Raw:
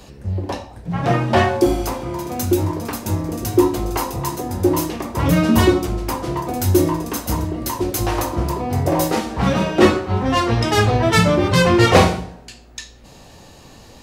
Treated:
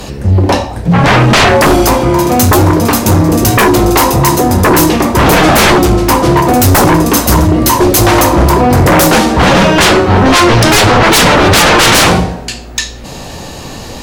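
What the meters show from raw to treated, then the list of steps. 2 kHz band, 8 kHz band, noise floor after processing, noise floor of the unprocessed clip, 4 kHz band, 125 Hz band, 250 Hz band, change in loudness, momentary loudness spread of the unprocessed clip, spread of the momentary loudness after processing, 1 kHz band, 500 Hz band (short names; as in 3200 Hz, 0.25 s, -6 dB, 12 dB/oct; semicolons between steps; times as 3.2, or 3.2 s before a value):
+14.0 dB, +16.0 dB, -26 dBFS, -44 dBFS, +14.5 dB, +10.0 dB, +10.0 dB, +11.5 dB, 11 LU, 12 LU, +13.0 dB, +9.5 dB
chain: notches 50/100 Hz; sine folder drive 16 dB, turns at -1.5 dBFS; gain -1.5 dB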